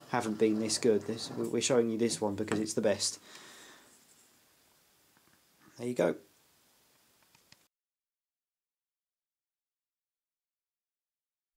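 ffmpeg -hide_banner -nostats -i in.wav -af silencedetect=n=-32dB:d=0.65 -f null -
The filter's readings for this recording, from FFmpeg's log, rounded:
silence_start: 3.14
silence_end: 5.81 | silence_duration: 2.67
silence_start: 6.12
silence_end: 11.56 | silence_duration: 5.44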